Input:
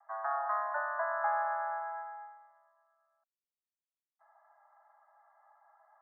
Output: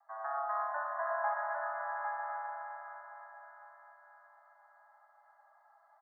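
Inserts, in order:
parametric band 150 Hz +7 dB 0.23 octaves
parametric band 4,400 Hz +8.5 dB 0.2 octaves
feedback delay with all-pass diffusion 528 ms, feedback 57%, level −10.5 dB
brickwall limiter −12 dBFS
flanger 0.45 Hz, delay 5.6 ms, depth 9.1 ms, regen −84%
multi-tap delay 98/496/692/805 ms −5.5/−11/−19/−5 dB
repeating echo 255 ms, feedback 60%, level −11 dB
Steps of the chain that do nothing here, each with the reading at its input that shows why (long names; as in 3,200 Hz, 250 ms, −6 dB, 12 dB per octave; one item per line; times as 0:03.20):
parametric band 150 Hz: nothing at its input below 570 Hz
parametric band 4,400 Hz: nothing at its input above 1,800 Hz
brickwall limiter −12 dBFS: peak of its input −19.5 dBFS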